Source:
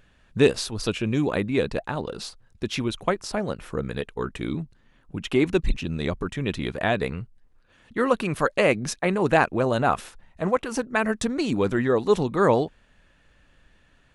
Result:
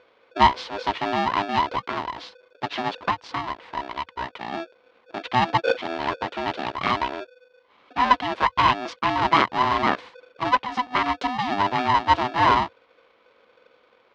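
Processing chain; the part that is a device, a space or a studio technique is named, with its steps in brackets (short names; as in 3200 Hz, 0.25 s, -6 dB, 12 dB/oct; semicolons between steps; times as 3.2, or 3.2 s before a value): 3.06–4.53 low shelf 290 Hz -7.5 dB; ring modulator pedal into a guitar cabinet (polarity switched at an audio rate 500 Hz; speaker cabinet 82–4200 Hz, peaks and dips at 87 Hz -9 dB, 160 Hz -10 dB, 1000 Hz +8 dB); gain -1 dB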